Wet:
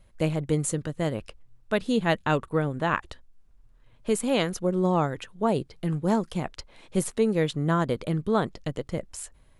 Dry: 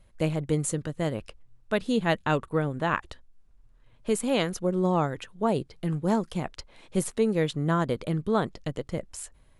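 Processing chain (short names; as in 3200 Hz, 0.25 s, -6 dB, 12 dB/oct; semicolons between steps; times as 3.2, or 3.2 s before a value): gain +1 dB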